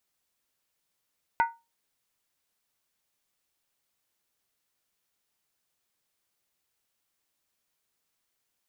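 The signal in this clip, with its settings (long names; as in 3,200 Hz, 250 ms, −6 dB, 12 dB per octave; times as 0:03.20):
struck skin, lowest mode 925 Hz, decay 0.25 s, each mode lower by 6.5 dB, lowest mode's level −17 dB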